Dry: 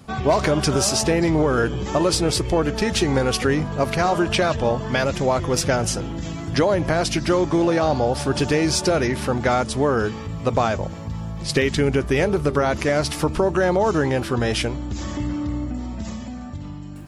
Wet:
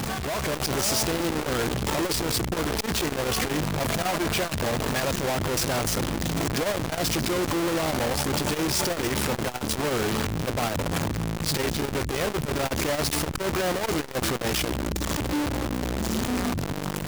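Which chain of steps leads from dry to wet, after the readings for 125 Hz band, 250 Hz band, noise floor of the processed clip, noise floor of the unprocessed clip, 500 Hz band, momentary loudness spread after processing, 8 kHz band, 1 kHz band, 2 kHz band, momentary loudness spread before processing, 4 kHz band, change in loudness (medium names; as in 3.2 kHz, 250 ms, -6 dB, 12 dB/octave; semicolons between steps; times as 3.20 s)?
-5.5 dB, -5.5 dB, -32 dBFS, -33 dBFS, -7.5 dB, 3 LU, -1.0 dB, -5.5 dB, -3.5 dB, 10 LU, -1.5 dB, -5.0 dB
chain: one-bit comparator; level rider gain up to 5 dB; transformer saturation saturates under 120 Hz; trim -7 dB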